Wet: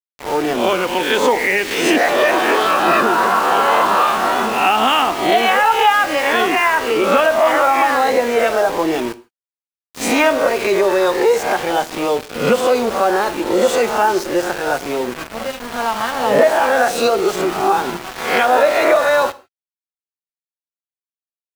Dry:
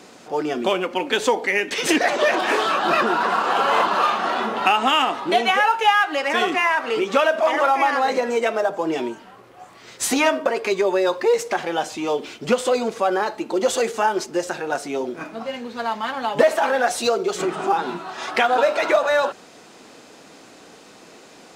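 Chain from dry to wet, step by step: spectral swells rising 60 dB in 0.60 s; low-pass opened by the level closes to 1700 Hz, open at -16 dBFS; high shelf 4400 Hz -8.5 dB; in parallel at +3 dB: limiter -10 dBFS, peak gain reduction 8 dB; on the sum: sample gate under -20 dBFS; on a send at -14.5 dB: reverb, pre-delay 7 ms; on the sum: gain -3.5 dB

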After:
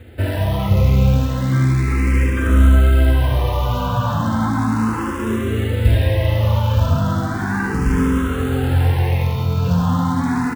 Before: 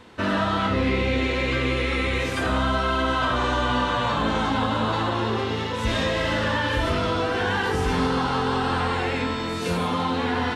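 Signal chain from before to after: in parallel at +0.5 dB: limiter -21 dBFS, peak gain reduction 9 dB; on the sum: tone controls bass +4 dB, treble -14 dB; doubler 45 ms -11.5 dB; short-mantissa float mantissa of 2-bit; bell 96 Hz +13.5 dB 1.5 oct; on a send: echo 76 ms -6 dB; on the sum: endless phaser +0.35 Hz; gain -3 dB

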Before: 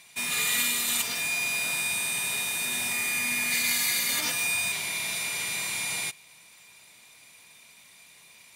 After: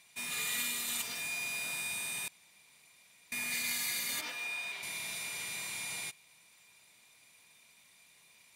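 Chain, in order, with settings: 2.28–3.32 room tone; 4.21–4.83 three-band isolator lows -15 dB, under 270 Hz, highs -13 dB, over 4400 Hz; gain -9 dB

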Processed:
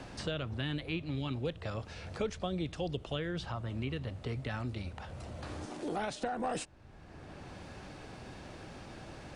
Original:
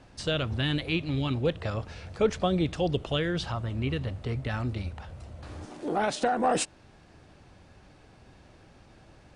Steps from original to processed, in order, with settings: three-band squash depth 70%; gain -8 dB

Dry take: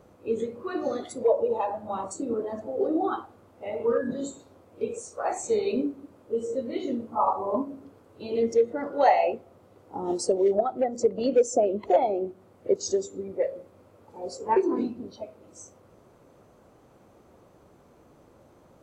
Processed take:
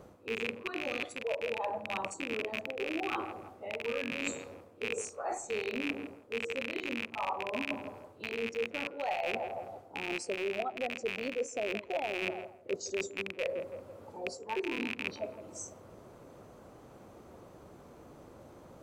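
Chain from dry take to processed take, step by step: rattling part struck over -41 dBFS, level -14 dBFS; narrowing echo 0.165 s, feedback 54%, band-pass 660 Hz, level -17 dB; reverse; compressor 6:1, threshold -36 dBFS, peak gain reduction 20 dB; reverse; gain +3 dB

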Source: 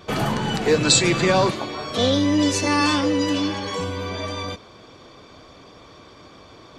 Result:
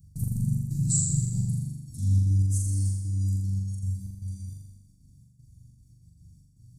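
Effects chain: elliptic band-stop 140–9000 Hz, stop band 50 dB; step gate "x.x.xxx..xxxx.x" 192 bpm -60 dB; flutter echo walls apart 7.1 m, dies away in 1.1 s

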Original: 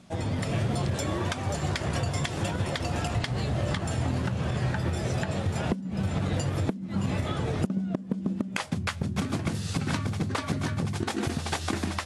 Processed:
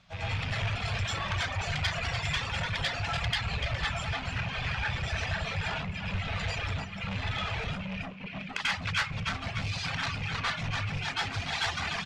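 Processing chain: rattling part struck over -33 dBFS, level -29 dBFS; air absorption 210 m; echo 0.294 s -5.5 dB; plate-style reverb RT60 0.5 s, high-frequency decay 0.8×, pre-delay 80 ms, DRR -8 dB; reverb removal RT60 1.8 s; soft clip -20.5 dBFS, distortion -11 dB; passive tone stack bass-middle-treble 10-0-10; gain +6 dB

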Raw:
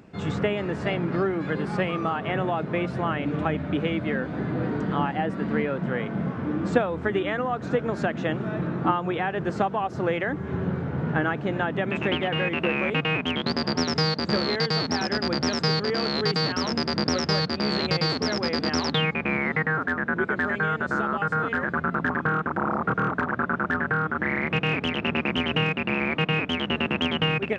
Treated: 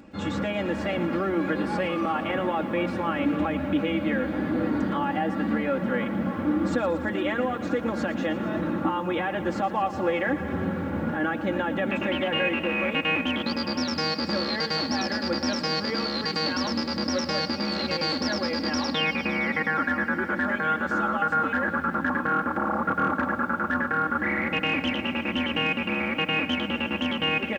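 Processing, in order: limiter -18.5 dBFS, peak gain reduction 10.5 dB; comb 3.6 ms, depth 81%; lo-fi delay 0.116 s, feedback 80%, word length 9-bit, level -14 dB

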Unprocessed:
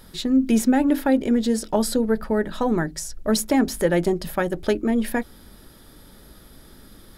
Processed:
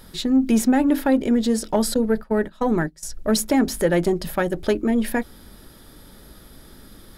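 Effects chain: 1.94–3.03 gate -24 dBFS, range -18 dB; in parallel at -4 dB: soft clip -15.5 dBFS, distortion -15 dB; on the sum: gain -2.5 dB

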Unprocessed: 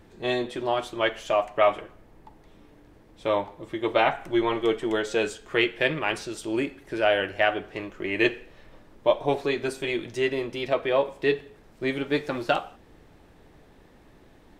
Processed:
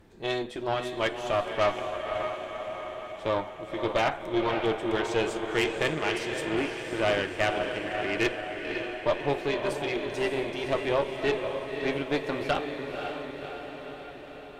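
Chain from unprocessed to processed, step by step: diffused feedback echo 0.545 s, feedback 64%, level -6 dB; tube stage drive 18 dB, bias 0.65

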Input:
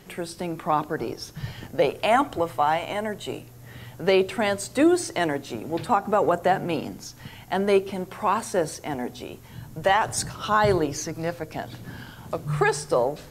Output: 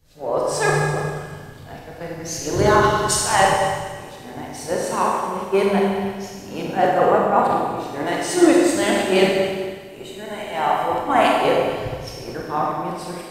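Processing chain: whole clip reversed; Schroeder reverb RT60 2.6 s, combs from 31 ms, DRR -3.5 dB; three-band expander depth 70%

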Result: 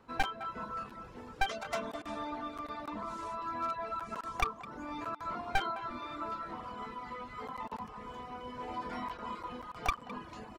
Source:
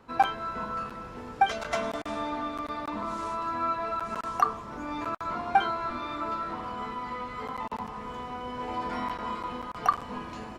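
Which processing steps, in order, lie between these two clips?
one-sided fold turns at -22.5 dBFS; reverb removal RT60 0.74 s; speakerphone echo 0.21 s, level -15 dB; gain -5 dB

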